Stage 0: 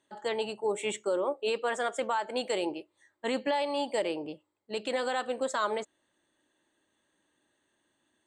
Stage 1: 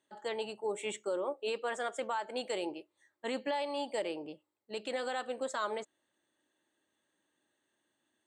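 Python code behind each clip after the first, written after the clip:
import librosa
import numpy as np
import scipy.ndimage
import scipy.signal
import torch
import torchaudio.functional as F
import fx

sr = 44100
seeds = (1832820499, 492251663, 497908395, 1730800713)

y = fx.highpass(x, sr, hz=120.0, slope=6)
y = fx.notch(y, sr, hz=1000.0, q=26.0)
y = F.gain(torch.from_numpy(y), -5.0).numpy()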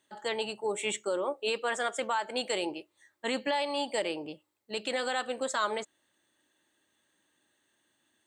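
y = fx.peak_eq(x, sr, hz=460.0, db=-5.5, octaves=2.8)
y = F.gain(torch.from_numpy(y), 8.5).numpy()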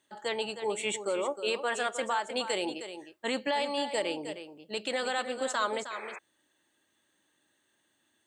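y = x + 10.0 ** (-10.5 / 20.0) * np.pad(x, (int(312 * sr / 1000.0), 0))[:len(x)]
y = fx.spec_paint(y, sr, seeds[0], shape='noise', start_s=5.9, length_s=0.29, low_hz=330.0, high_hz=2600.0, level_db=-43.0)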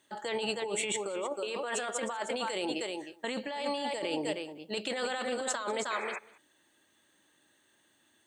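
y = fx.over_compress(x, sr, threshold_db=-35.0, ratio=-1.0)
y = y + 10.0 ** (-22.0 / 20.0) * np.pad(y, (int(195 * sr / 1000.0), 0))[:len(y)]
y = F.gain(torch.from_numpy(y), 1.5).numpy()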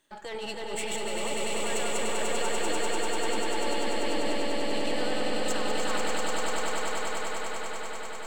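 y = np.where(x < 0.0, 10.0 ** (-7.0 / 20.0) * x, x)
y = fx.echo_swell(y, sr, ms=98, loudest=8, wet_db=-4.5)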